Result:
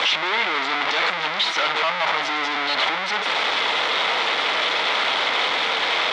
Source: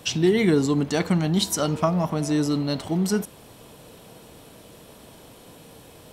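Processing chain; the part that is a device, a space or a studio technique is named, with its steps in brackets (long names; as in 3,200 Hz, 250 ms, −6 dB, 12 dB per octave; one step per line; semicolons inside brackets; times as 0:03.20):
home computer beeper (sign of each sample alone; loudspeaker in its box 720–4,300 Hz, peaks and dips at 870 Hz +4 dB, 1,300 Hz +6 dB, 2,100 Hz +10 dB, 3,500 Hz +7 dB)
level +5 dB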